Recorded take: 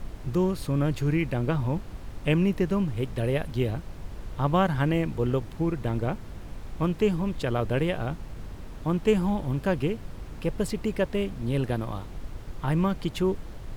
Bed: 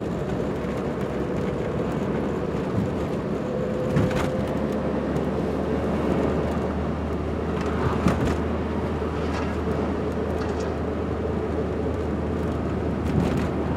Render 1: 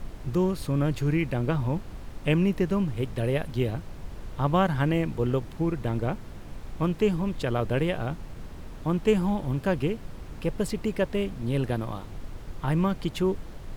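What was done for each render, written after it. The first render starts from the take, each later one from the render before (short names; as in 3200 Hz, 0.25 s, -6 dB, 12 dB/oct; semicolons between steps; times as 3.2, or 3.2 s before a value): de-hum 50 Hz, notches 2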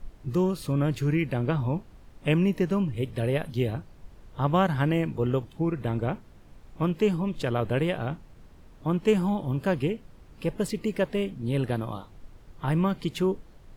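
noise print and reduce 11 dB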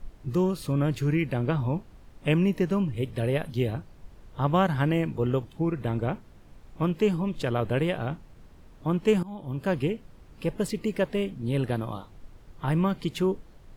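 9.23–9.76 fade in, from -20 dB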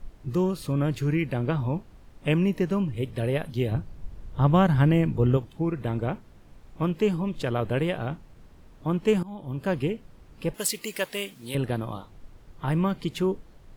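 3.71–5.37 low shelf 200 Hz +9.5 dB; 10.54–11.55 tilt +4.5 dB/oct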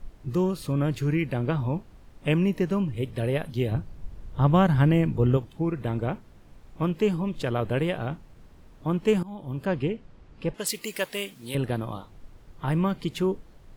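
9.65–10.67 air absorption 82 m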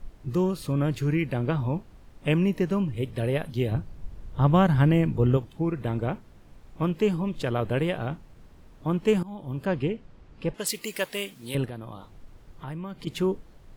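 11.65–13.07 compressor 2.5:1, threshold -38 dBFS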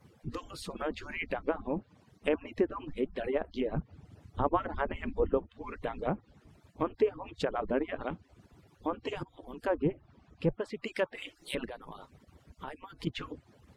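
median-filter separation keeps percussive; treble ducked by the level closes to 1300 Hz, closed at -27.5 dBFS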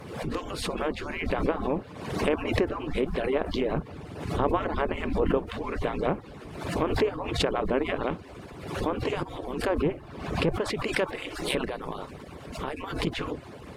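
per-bin compression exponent 0.6; backwards sustainer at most 59 dB/s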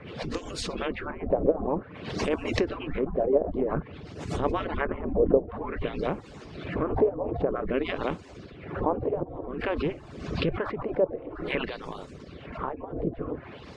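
LFO low-pass sine 0.52 Hz 580–7500 Hz; rotary speaker horn 8 Hz, later 1.1 Hz, at 4.84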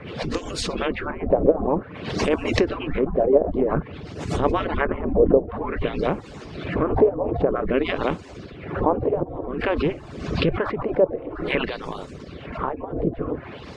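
gain +6 dB; limiter -3 dBFS, peak gain reduction 2 dB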